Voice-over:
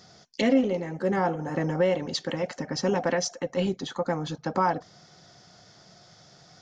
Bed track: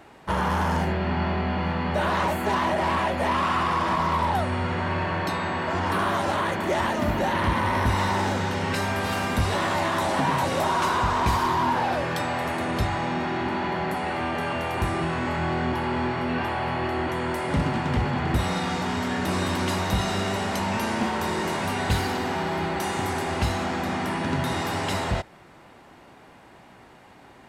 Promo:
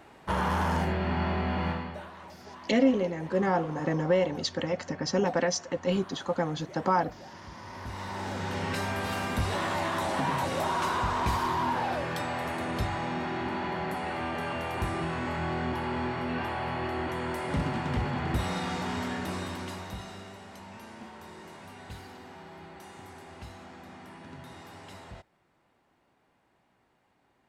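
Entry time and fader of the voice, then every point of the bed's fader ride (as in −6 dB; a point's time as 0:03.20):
2.30 s, −1.0 dB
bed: 0:01.70 −3.5 dB
0:02.12 −23 dB
0:07.50 −23 dB
0:08.56 −5.5 dB
0:19.03 −5.5 dB
0:20.38 −20 dB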